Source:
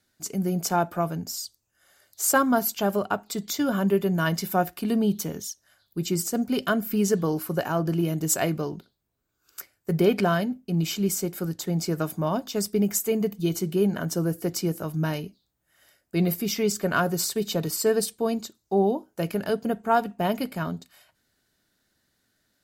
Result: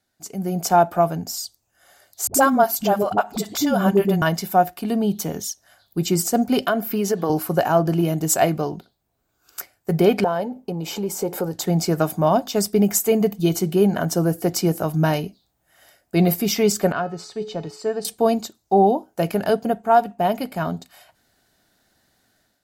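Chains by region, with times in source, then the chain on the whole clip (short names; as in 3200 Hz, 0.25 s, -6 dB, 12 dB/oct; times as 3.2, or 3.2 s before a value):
2.27–4.22 dispersion highs, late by 74 ms, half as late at 370 Hz + upward compressor, threshold -24 dBFS
6.65–7.3 HPF 230 Hz + compressor 3:1, threshold -24 dBFS + bell 8000 Hz -6.5 dB 0.79 oct
10.24–11.54 compressor 4:1, threshold -34 dBFS + small resonant body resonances 500/860 Hz, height 14 dB, ringing for 20 ms
16.92–18.05 air absorption 120 m + resonator 430 Hz, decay 0.63 s, mix 70%
whole clip: bell 740 Hz +8.5 dB 0.53 oct; AGC gain up to 10.5 dB; gain -3.5 dB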